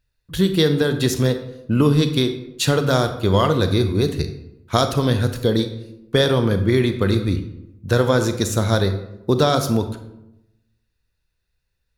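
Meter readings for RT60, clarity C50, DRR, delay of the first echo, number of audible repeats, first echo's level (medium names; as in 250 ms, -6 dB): 0.90 s, 9.5 dB, 8.0 dB, no echo, no echo, no echo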